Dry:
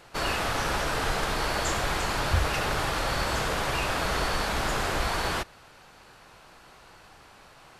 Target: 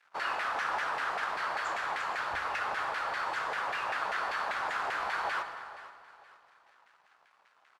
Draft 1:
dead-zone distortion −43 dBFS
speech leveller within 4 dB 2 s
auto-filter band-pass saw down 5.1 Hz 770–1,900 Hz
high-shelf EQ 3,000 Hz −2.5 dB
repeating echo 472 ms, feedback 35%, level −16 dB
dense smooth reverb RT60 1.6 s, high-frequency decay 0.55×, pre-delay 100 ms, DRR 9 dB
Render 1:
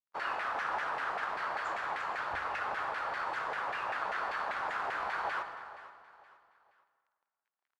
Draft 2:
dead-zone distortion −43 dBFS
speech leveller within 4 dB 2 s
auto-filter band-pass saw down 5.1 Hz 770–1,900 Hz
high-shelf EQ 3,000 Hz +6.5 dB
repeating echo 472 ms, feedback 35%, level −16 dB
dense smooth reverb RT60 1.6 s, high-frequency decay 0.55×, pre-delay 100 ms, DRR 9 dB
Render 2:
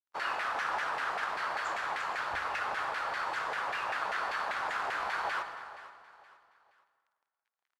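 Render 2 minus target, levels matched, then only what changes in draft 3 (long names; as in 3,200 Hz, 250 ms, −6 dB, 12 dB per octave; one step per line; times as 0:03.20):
dead-zone distortion: distortion +7 dB
change: dead-zone distortion −51 dBFS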